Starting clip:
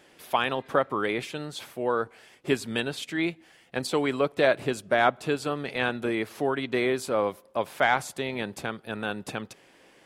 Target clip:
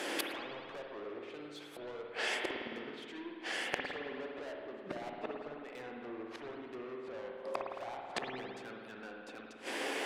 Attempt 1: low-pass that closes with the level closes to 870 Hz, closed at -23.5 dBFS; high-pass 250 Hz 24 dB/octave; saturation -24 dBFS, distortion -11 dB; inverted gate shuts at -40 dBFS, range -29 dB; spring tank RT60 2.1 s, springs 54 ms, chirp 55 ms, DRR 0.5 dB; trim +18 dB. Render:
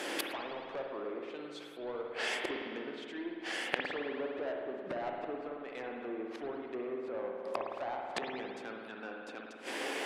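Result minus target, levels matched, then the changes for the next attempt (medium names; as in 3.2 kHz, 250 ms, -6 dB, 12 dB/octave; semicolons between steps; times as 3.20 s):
saturation: distortion -6 dB
change: saturation -33 dBFS, distortion -5 dB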